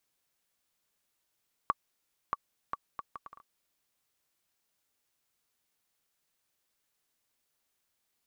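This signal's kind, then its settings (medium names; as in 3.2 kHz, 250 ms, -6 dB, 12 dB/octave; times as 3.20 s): bouncing ball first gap 0.63 s, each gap 0.64, 1.14 kHz, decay 33 ms -14 dBFS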